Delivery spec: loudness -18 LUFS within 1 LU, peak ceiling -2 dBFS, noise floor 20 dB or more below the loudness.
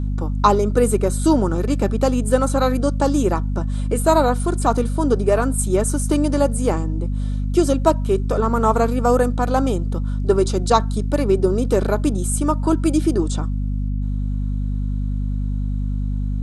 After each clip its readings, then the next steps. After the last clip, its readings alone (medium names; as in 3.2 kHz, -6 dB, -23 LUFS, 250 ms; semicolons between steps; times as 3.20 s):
hum 50 Hz; highest harmonic 250 Hz; hum level -19 dBFS; loudness -20.0 LUFS; peak level -2.0 dBFS; loudness target -18.0 LUFS
-> de-hum 50 Hz, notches 5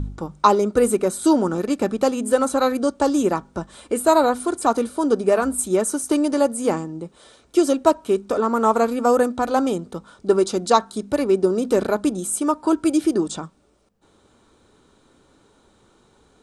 hum not found; loudness -20.5 LUFS; peak level -2.0 dBFS; loudness target -18.0 LUFS
-> trim +2.5 dB; peak limiter -2 dBFS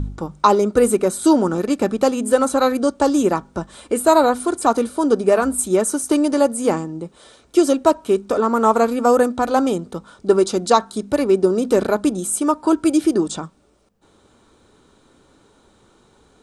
loudness -18.0 LUFS; peak level -2.0 dBFS; noise floor -56 dBFS